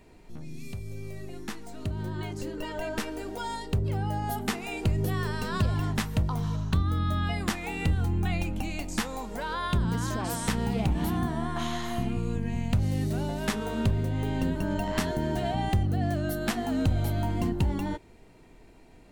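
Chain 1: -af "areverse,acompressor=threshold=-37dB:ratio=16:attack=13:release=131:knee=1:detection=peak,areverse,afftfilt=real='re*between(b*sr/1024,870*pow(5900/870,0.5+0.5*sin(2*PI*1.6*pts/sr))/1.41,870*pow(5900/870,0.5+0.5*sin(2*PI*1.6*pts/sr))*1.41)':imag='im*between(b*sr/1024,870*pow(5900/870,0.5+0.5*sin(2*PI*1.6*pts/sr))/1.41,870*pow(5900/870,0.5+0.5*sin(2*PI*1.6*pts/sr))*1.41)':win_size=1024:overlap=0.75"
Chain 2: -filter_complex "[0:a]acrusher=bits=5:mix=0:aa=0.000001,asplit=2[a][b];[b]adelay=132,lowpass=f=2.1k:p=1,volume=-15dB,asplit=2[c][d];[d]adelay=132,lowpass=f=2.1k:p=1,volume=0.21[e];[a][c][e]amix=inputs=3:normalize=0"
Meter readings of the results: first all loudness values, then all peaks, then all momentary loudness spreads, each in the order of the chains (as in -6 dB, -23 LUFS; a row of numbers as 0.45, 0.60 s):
-52.0, -29.5 LUFS; -34.5, -14.0 dBFS; 15, 7 LU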